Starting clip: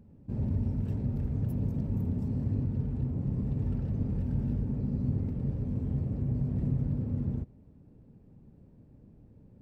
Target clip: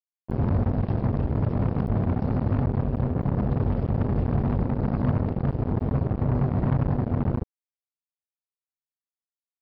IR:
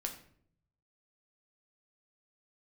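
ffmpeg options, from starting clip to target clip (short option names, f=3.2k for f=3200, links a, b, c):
-filter_complex "[0:a]asplit=2[a][b];[b]adelay=145.8,volume=-21dB,highshelf=f=4k:g=-3.28[c];[a][c]amix=inputs=2:normalize=0,aresample=11025,acrusher=bits=4:mix=0:aa=0.5,aresample=44100,volume=6dB"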